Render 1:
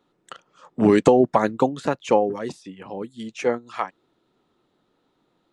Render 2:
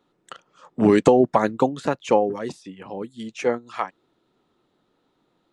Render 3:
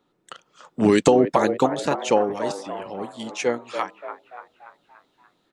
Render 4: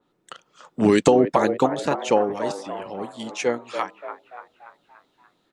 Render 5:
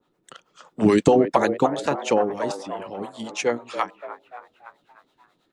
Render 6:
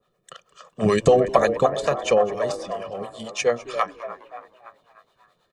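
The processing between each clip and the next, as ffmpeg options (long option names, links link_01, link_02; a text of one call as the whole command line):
ffmpeg -i in.wav -af anull out.wav
ffmpeg -i in.wav -filter_complex "[0:a]acrossover=split=2600[link_01][link_02];[link_01]asplit=7[link_03][link_04][link_05][link_06][link_07][link_08][link_09];[link_04]adelay=289,afreqshift=82,volume=-9dB[link_10];[link_05]adelay=578,afreqshift=164,volume=-14.8dB[link_11];[link_06]adelay=867,afreqshift=246,volume=-20.7dB[link_12];[link_07]adelay=1156,afreqshift=328,volume=-26.5dB[link_13];[link_08]adelay=1445,afreqshift=410,volume=-32.4dB[link_14];[link_09]adelay=1734,afreqshift=492,volume=-38.2dB[link_15];[link_03][link_10][link_11][link_12][link_13][link_14][link_15]amix=inputs=7:normalize=0[link_16];[link_02]dynaudnorm=framelen=260:gausssize=3:maxgain=8dB[link_17];[link_16][link_17]amix=inputs=2:normalize=0,volume=-1dB" out.wav
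ffmpeg -i in.wav -af "adynamicequalizer=threshold=0.0158:dfrequency=3100:dqfactor=0.7:tfrequency=3100:tqfactor=0.7:attack=5:release=100:ratio=0.375:range=1.5:mode=cutabove:tftype=highshelf" out.wav
ffmpeg -i in.wav -filter_complex "[0:a]acrossover=split=420[link_01][link_02];[link_01]aeval=exprs='val(0)*(1-0.7/2+0.7/2*cos(2*PI*9.3*n/s))':channel_layout=same[link_03];[link_02]aeval=exprs='val(0)*(1-0.7/2-0.7/2*cos(2*PI*9.3*n/s))':channel_layout=same[link_04];[link_03][link_04]amix=inputs=2:normalize=0,volume=3dB" out.wav
ffmpeg -i in.wav -filter_complex "[0:a]aecho=1:1:1.7:0.8,asplit=4[link_01][link_02][link_03][link_04];[link_02]adelay=206,afreqshift=-100,volume=-19dB[link_05];[link_03]adelay=412,afreqshift=-200,volume=-27.2dB[link_06];[link_04]adelay=618,afreqshift=-300,volume=-35.4dB[link_07];[link_01][link_05][link_06][link_07]amix=inputs=4:normalize=0,volume=-1dB" out.wav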